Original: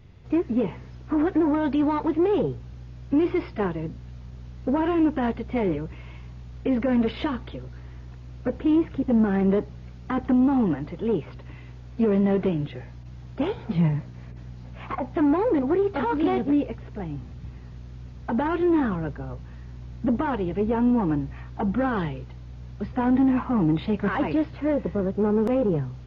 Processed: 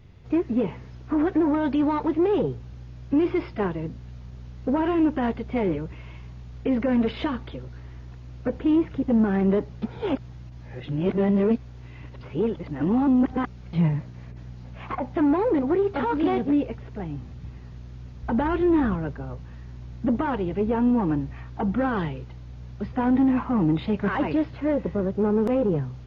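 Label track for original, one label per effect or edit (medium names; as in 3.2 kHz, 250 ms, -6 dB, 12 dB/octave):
9.820000	13.730000	reverse
18.230000	18.960000	bass shelf 90 Hz +10 dB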